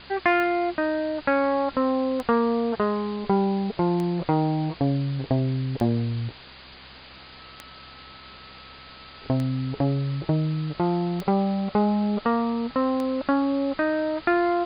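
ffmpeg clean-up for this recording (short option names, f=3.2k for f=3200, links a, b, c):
-af "adeclick=t=4,bandreject=f=65.2:t=h:w=4,bandreject=f=130.4:t=h:w=4,bandreject=f=195.6:t=h:w=4,bandreject=f=260.8:t=h:w=4,bandreject=f=1.3k:w=30,afwtdn=0.01"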